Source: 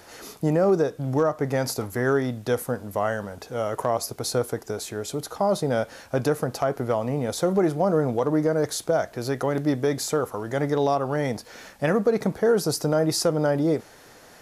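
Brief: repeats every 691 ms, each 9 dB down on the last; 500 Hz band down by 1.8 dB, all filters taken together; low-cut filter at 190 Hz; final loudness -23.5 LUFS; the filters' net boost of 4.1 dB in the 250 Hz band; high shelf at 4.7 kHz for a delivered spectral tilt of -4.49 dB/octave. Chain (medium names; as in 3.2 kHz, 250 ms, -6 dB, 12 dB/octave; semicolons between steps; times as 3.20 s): high-pass 190 Hz; peaking EQ 250 Hz +8.5 dB; peaking EQ 500 Hz -4.5 dB; treble shelf 4.7 kHz +7.5 dB; feedback delay 691 ms, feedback 35%, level -9 dB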